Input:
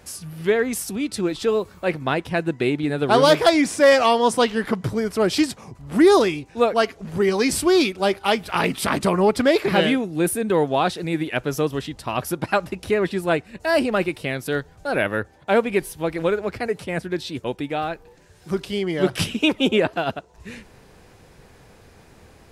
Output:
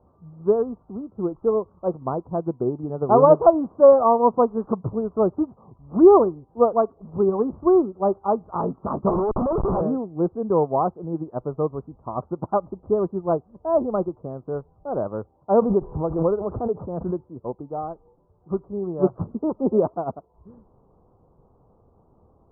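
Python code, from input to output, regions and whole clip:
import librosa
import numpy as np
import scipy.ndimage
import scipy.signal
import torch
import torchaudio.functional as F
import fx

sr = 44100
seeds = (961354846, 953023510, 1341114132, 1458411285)

y = fx.chain(x, sr, fx.highpass(hz=280.0, slope=12),
    fx.schmitt(flips_db=-27.0), at=(9.09, 9.81))
y = fx.chain(y, sr, fx.lowpass(hz=8200.0, slope=12),
    fx.pre_swell(db_per_s=32.0), at=(15.59, 17.29))
y = scipy.signal.sosfilt(scipy.signal.butter(12, 1200.0, 'lowpass', fs=sr, output='sos'), y)
y = fx.dynamic_eq(y, sr, hz=290.0, q=6.9, threshold_db=-37.0, ratio=4.0, max_db=-6)
y = fx.upward_expand(y, sr, threshold_db=-34.0, expansion=1.5)
y = F.gain(torch.from_numpy(y), 3.5).numpy()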